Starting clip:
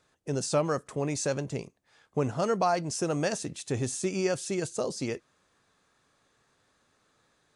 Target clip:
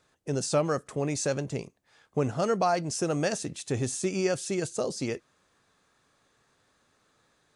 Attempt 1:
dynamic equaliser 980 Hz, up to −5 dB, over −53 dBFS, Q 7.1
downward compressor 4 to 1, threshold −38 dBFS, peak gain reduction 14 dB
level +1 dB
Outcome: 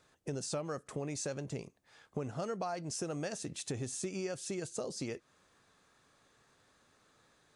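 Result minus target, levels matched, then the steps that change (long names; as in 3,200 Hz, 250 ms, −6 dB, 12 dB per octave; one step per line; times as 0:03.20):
downward compressor: peak gain reduction +14 dB
remove: downward compressor 4 to 1, threshold −38 dBFS, peak gain reduction 14 dB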